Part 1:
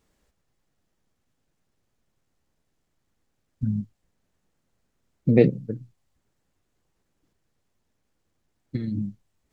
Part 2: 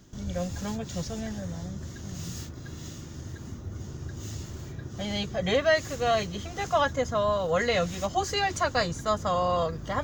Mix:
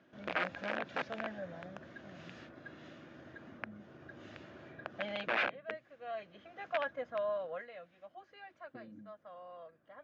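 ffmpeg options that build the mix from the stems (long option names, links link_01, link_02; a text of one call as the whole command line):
ffmpeg -i stem1.wav -i stem2.wav -filter_complex "[0:a]equalizer=frequency=500:width_type=o:width=1:gain=7,equalizer=frequency=1000:width_type=o:width=1:gain=4,equalizer=frequency=2000:width_type=o:width=1:gain=-11,volume=-13.5dB,asplit=2[link_01][link_02];[1:a]volume=-0.5dB,afade=type=out:start_time=4.91:duration=0.57:silence=0.354813,afade=type=out:start_time=7.41:duration=0.27:silence=0.237137[link_03];[link_02]apad=whole_len=442691[link_04];[link_03][link_04]sidechaincompress=threshold=-39dB:ratio=6:attack=33:release=810[link_05];[link_01][link_05]amix=inputs=2:normalize=0,equalizer=frequency=2300:width=0.51:gain=-8,aeval=exprs='(mod(22.4*val(0)+1,2)-1)/22.4':channel_layout=same,highpass=390,equalizer=frequency=410:width_type=q:width=4:gain=-7,equalizer=frequency=620:width_type=q:width=4:gain=5,equalizer=frequency=910:width_type=q:width=4:gain=-4,equalizer=frequency=1600:width_type=q:width=4:gain=8,equalizer=frequency=2400:width_type=q:width=4:gain=6,lowpass=frequency=3100:width=0.5412,lowpass=frequency=3100:width=1.3066" out.wav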